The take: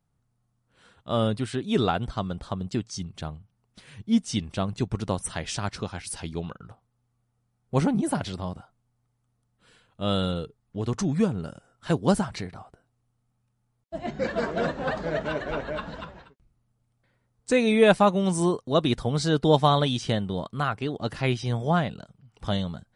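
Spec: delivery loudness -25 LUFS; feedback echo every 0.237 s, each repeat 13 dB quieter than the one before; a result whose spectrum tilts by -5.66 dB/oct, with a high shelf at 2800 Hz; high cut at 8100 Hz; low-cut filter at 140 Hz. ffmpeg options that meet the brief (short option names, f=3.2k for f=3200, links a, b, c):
-af "highpass=140,lowpass=8.1k,highshelf=f=2.8k:g=-7.5,aecho=1:1:237|474|711:0.224|0.0493|0.0108,volume=2.5dB"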